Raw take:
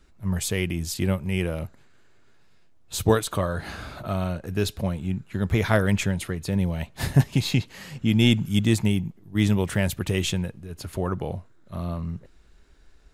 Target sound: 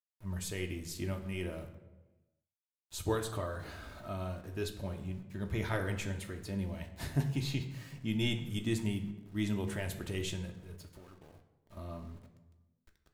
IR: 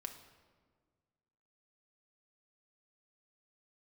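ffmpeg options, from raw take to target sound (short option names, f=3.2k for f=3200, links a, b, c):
-filter_complex "[0:a]asettb=1/sr,asplit=3[a][b][c];[a]atrim=end=10.784[d];[b]atrim=start=10.78:end=11.77,asetpts=PTS-STARTPTS,afade=t=in:d=0.004:c=qsin,afade=t=out:st=0.986:d=0.004:c=qsin,acompressor=threshold=-39dB:ratio=10[e];[c]atrim=start=11.766[f];[d][e]acrossfade=d=0.004:c1=hsin:c2=qsin[g];[g][f]acrossfade=d=0.004:c1=qsin:c2=hsin,aeval=exprs='val(0)*gte(abs(val(0)),0.00596)':c=same,flanger=delay=1.7:depth=1.6:regen=-77:speed=0.38:shape=triangular[h];[1:a]atrim=start_sample=2205,asetrate=70560,aresample=44100[i];[h][i]afir=irnorm=-1:irlink=0"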